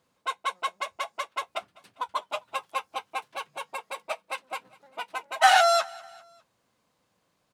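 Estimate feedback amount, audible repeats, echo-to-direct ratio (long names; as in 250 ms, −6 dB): 51%, 3, −22.0 dB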